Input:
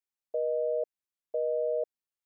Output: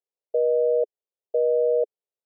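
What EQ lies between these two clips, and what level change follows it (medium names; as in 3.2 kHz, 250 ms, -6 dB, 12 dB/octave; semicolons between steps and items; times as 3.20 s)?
resonant high-pass 420 Hz, resonance Q 3.5; tilt EQ -3.5 dB/octave; static phaser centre 630 Hz, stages 4; -1.5 dB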